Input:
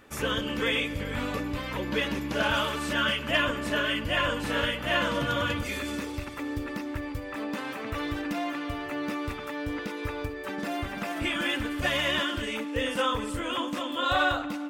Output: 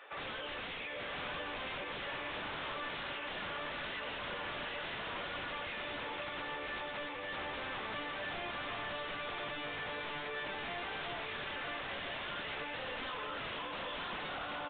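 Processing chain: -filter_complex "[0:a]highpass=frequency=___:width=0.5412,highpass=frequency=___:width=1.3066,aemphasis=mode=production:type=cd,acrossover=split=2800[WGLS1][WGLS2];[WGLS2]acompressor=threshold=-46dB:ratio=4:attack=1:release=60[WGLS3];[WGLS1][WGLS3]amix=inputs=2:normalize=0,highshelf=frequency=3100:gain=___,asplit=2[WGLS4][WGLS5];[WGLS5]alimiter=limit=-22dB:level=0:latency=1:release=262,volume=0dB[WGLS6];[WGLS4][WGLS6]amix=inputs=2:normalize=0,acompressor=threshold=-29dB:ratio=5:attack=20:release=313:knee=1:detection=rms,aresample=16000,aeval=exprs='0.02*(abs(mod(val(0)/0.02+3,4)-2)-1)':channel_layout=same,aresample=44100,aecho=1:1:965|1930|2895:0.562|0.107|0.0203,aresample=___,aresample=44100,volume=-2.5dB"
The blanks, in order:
520, 520, -4, 8000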